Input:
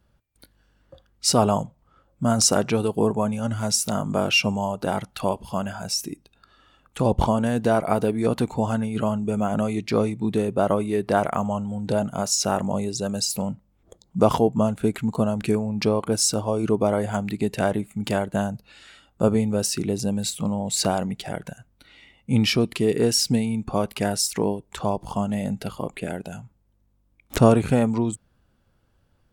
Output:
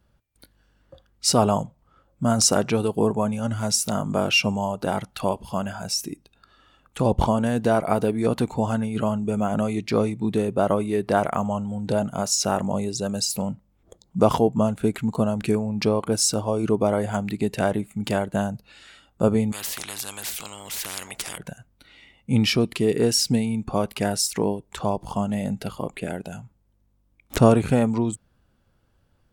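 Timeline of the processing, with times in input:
19.52–21.38 spectral compressor 10:1

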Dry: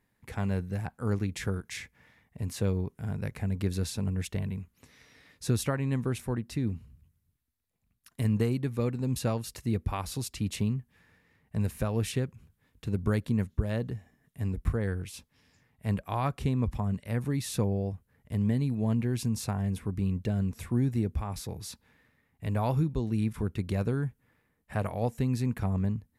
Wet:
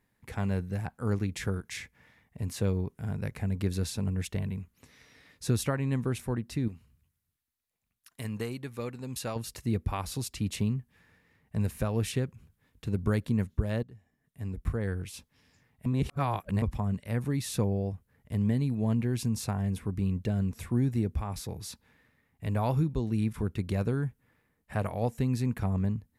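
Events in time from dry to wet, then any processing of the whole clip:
6.68–9.36 low shelf 440 Hz -11 dB
13.83–15.03 fade in, from -18.5 dB
15.86–16.62 reverse

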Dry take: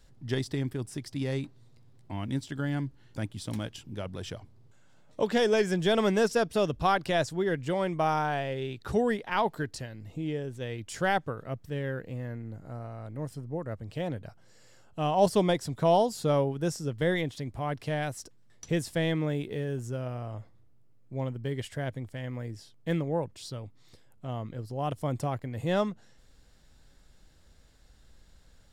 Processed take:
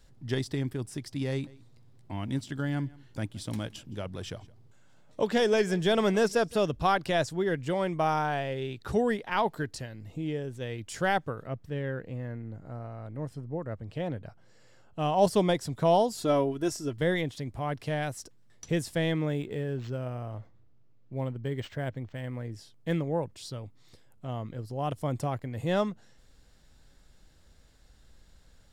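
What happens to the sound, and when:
1.3–6.56 echo 0.167 s -22.5 dB
11.47–14.99 high shelf 5700 Hz -10.5 dB
16.17–16.98 comb 3 ms
19.41–22.52 decimation joined by straight lines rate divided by 4×

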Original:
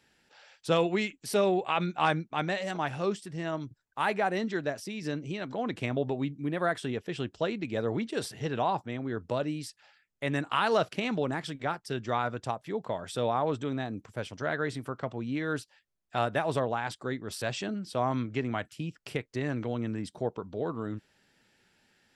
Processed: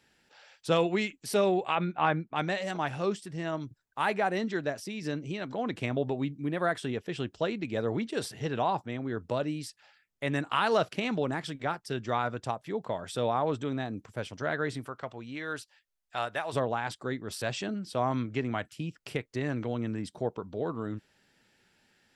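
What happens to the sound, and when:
1.75–2.36 LPF 2500 Hz
14.85–16.52 bell 180 Hz -8 dB -> -14 dB 3 oct

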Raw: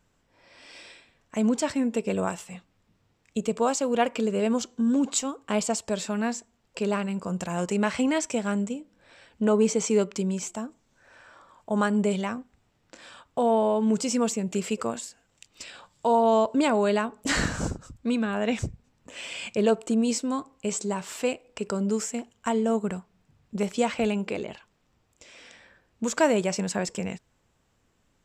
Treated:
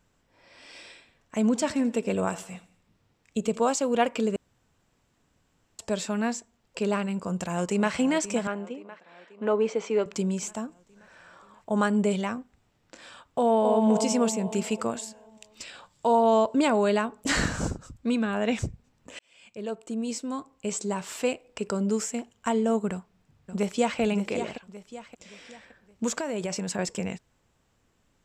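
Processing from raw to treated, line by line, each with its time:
1.44–3.64 feedback echo 85 ms, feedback 46%, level -18 dB
4.36–5.79 room tone
7.18–7.93 echo throw 0.53 s, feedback 65%, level -14 dB
8.47–10.06 BPF 350–2900 Hz
13.39–13.87 echo throw 0.25 s, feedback 55%, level -5.5 dB
19.19–21.04 fade in
22.91–24 echo throw 0.57 s, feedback 40%, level -9 dB
26.14–26.79 compressor 12:1, threshold -26 dBFS

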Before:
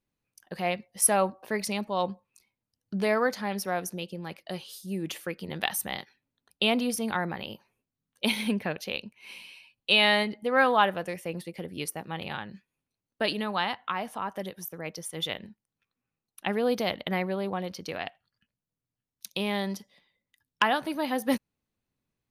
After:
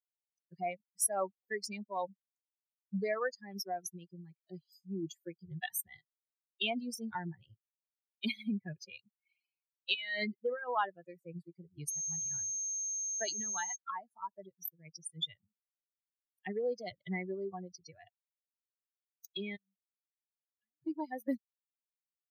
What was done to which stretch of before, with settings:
9.94–10.77 negative-ratio compressor -27 dBFS
11.87–13.75 whine 6400 Hz -36 dBFS
19.56–20.82 passive tone stack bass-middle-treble 10-0-1
whole clip: per-bin expansion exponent 3; HPF 120 Hz 24 dB/oct; compressor 2:1, threshold -43 dBFS; gain +5 dB

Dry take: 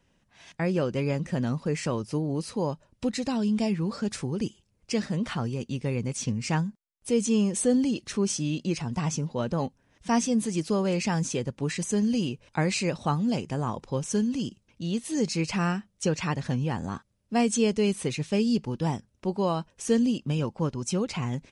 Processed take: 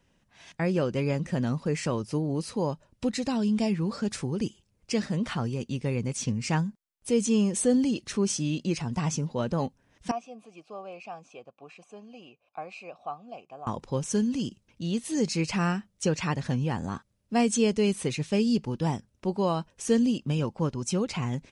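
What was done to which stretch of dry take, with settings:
10.11–13.67 vowel filter a

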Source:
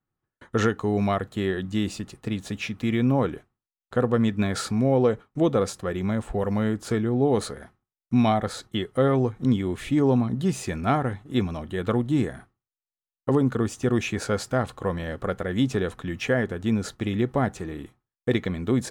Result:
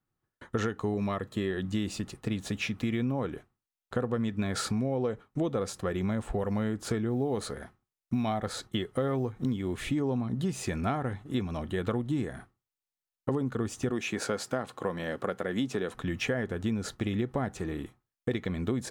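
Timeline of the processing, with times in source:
0.94–1.51 notch comb 740 Hz
7.09–9.9 short-mantissa float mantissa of 6-bit
13.91–15.95 HPF 180 Hz
whole clip: compressor 5:1, threshold -27 dBFS

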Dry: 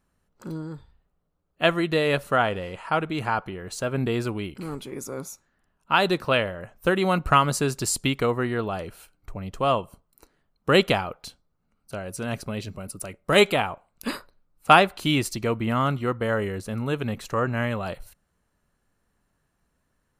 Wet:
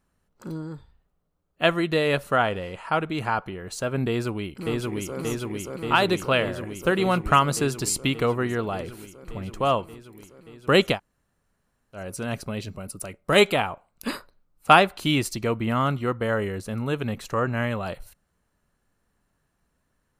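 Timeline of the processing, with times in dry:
4.08–5.18 echo throw 0.58 s, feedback 80%, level -1.5 dB
10.95–11.97 room tone, crossfade 0.10 s

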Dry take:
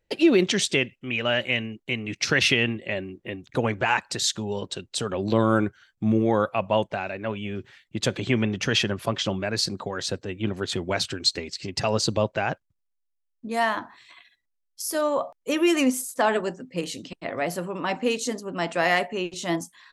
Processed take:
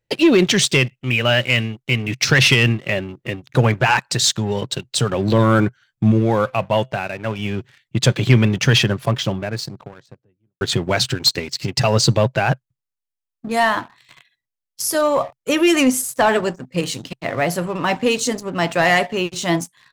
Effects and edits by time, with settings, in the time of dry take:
6.11–7.39 resonator 130 Hz, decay 0.37 s, mix 30%
8.56–10.61 studio fade out
whole clip: low shelf 400 Hz -5.5 dB; sample leveller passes 2; bell 130 Hz +15 dB 0.68 oct; gain +1 dB

